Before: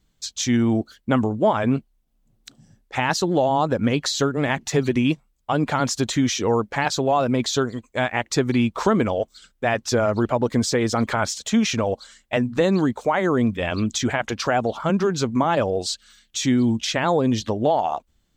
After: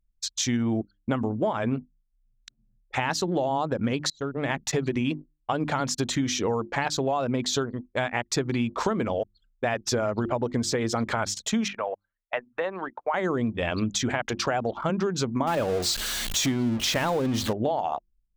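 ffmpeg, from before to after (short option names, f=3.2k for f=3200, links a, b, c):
-filter_complex "[0:a]asettb=1/sr,asplit=3[a][b][c];[a]atrim=end=11.684[d];[b]atrim=start=11.68:end=13.14,asetpts=PTS-STARTPTS,afade=t=in:d=0.004:c=qsin,afade=t=out:st=1.456:d=0.004:c=qsin,acrossover=split=570 2700:gain=0.0708 1 0.0708[e][f][g];[e][f][g]amix=inputs=3:normalize=0[h];[c]atrim=start=13.136[i];[d][h]acrossfade=d=0.004:c1=hsin:c2=qsin[j];[j][i]acrossfade=d=0.004:c1=qsin:c2=hsin,asettb=1/sr,asplit=3[k][l][m];[k]atrim=end=15.474[n];[l]atrim=start=15.47:end=17.53,asetpts=PTS-STARTPTS,afade=t=in:d=0.004:c=qsin,afade=t=out:st=2.056:d=0.004:c=qsin,aeval=exprs='val(0)+0.5*0.0596*sgn(val(0))':c=same[o];[m]atrim=start=17.526[p];[n][o]acrossfade=d=0.004:c1=hsin:c2=qsin[q];[q][p]acrossfade=d=0.004:c1=qsin:c2=hsin,asplit=2[r][s];[r]atrim=end=4.1,asetpts=PTS-STARTPTS,afade=t=out:st=4.096:d=0.004:c=hsin:silence=0.133352[t];[s]atrim=start=4.1,asetpts=PTS-STARTPTS,afade=t=in:d=0.58:silence=0.133352[u];[t][u]concat=n=2:v=0:a=1,bandreject=f=50:t=h:w=6,bandreject=f=100:t=h:w=6,bandreject=f=150:t=h:w=6,bandreject=f=200:t=h:w=6,bandreject=f=250:t=h:w=6,bandreject=f=300:t=h:w=6,bandreject=f=350:t=h:w=6,anlmdn=10,acompressor=threshold=-23dB:ratio=4"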